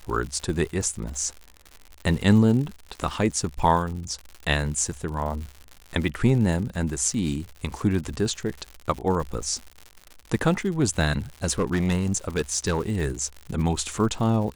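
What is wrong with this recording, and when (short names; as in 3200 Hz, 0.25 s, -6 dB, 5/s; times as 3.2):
crackle 120/s -32 dBFS
11.44–12.81 clipped -18 dBFS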